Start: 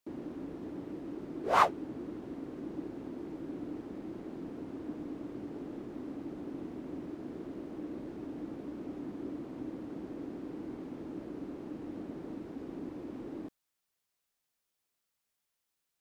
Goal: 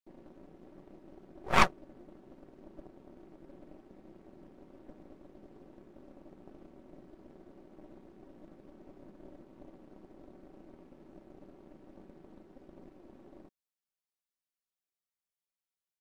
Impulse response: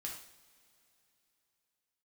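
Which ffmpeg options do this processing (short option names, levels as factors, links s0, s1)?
-af "aeval=exprs='0.299*(cos(1*acos(clip(val(0)/0.299,-1,1)))-cos(1*PI/2))+0.00944*(cos(3*acos(clip(val(0)/0.299,-1,1)))-cos(3*PI/2))+0.0944*(cos(4*acos(clip(val(0)/0.299,-1,1)))-cos(4*PI/2))+0.0299*(cos(7*acos(clip(val(0)/0.299,-1,1)))-cos(7*PI/2))':c=same,aecho=1:1:5.3:0.38"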